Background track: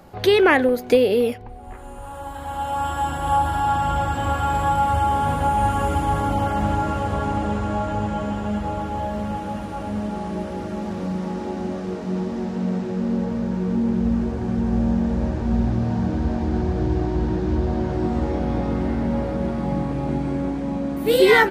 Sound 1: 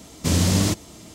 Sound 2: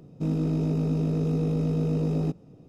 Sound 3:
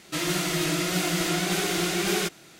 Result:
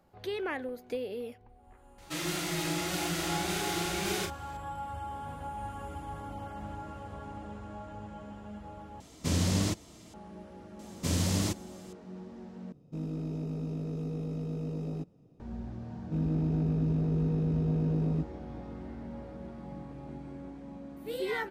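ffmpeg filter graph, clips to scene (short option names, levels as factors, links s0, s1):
-filter_complex "[1:a]asplit=2[s0][s1];[2:a]asplit=2[s2][s3];[0:a]volume=0.106[s4];[3:a]asplit=2[s5][s6];[s6]adelay=36,volume=0.531[s7];[s5][s7]amix=inputs=2:normalize=0[s8];[s0]highshelf=f=10000:g=-6.5[s9];[s3]bass=f=250:g=6,treble=f=4000:g=-7[s10];[s4]asplit=3[s11][s12][s13];[s11]atrim=end=9.004[s14];[s9]atrim=end=1.14,asetpts=PTS-STARTPTS,volume=0.376[s15];[s12]atrim=start=10.136:end=12.724[s16];[s2]atrim=end=2.68,asetpts=PTS-STARTPTS,volume=0.316[s17];[s13]atrim=start=15.396[s18];[s8]atrim=end=2.59,asetpts=PTS-STARTPTS,volume=0.398,afade=t=in:d=0.004:c=hsin,afade=t=out:st=2.586:d=0.004:c=hsin,adelay=1980[s19];[s1]atrim=end=1.14,asetpts=PTS-STARTPTS,volume=0.335,afade=t=in:d=0.004:c=hsin,afade=t=out:st=1.136:d=0.004:c=hsin,adelay=10790[s20];[s10]atrim=end=2.68,asetpts=PTS-STARTPTS,volume=0.398,afade=t=in:d=0.004:c=hsin,afade=t=out:st=2.676:d=0.004:c=hsin,adelay=15910[s21];[s14][s15]acrossfade=d=0.004:c1=hsin:c2=hsin[s22];[s22][s16]acrossfade=d=0.004:c1=hsin:c2=hsin[s23];[s23][s17]acrossfade=d=0.004:c1=hsin:c2=hsin[s24];[s24][s18]acrossfade=d=0.004:c1=hsin:c2=hsin[s25];[s25][s19][s20][s21]amix=inputs=4:normalize=0"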